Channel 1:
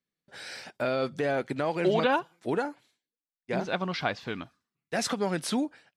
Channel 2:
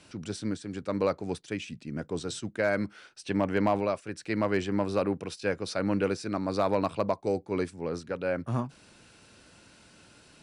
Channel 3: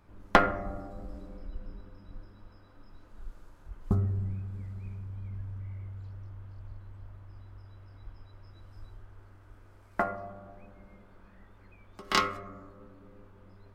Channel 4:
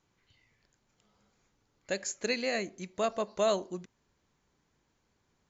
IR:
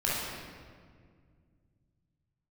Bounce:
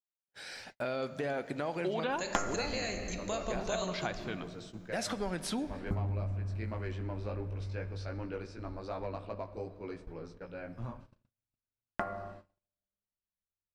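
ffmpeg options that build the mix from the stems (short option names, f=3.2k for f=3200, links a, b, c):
-filter_complex "[0:a]volume=-5dB,asplit=3[a][b][c];[b]volume=-22.5dB[d];[1:a]lowpass=5.2k,flanger=delay=17:depth=2.1:speed=2.7,adelay=2300,volume=-10dB,asplit=2[e][f];[f]volume=-20.5dB[g];[2:a]agate=range=-6dB:threshold=-43dB:ratio=16:detection=peak,adelay=2000,volume=-3dB,asplit=2[h][i];[i]volume=-23dB[j];[3:a]highshelf=f=3.5k:g=11.5,acompressor=threshold=-33dB:ratio=2,adelay=300,volume=-2.5dB,asplit=2[k][l];[l]volume=-13dB[m];[c]apad=whole_len=561365[n];[e][n]sidechaincompress=threshold=-41dB:ratio=8:attack=16:release=186[o];[4:a]atrim=start_sample=2205[p];[d][g][j][m]amix=inputs=4:normalize=0[q];[q][p]afir=irnorm=-1:irlink=0[r];[a][o][h][k][r]amix=inputs=5:normalize=0,agate=range=-41dB:threshold=-49dB:ratio=16:detection=peak,acompressor=threshold=-32dB:ratio=2.5"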